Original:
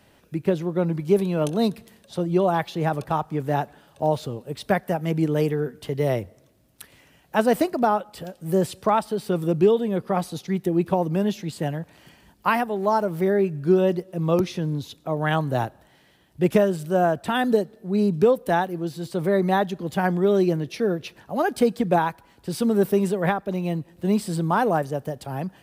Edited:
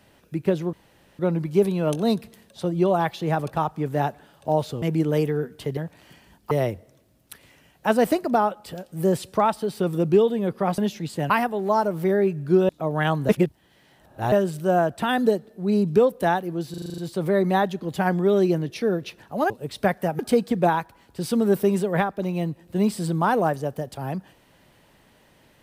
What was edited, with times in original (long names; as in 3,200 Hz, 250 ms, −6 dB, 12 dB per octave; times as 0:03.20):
0:00.73: splice in room tone 0.46 s
0:04.36–0:05.05: move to 0:21.48
0:10.27–0:11.21: remove
0:11.73–0:12.47: move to 0:06.00
0:13.86–0:14.95: remove
0:15.55–0:16.58: reverse
0:18.96: stutter 0.04 s, 8 plays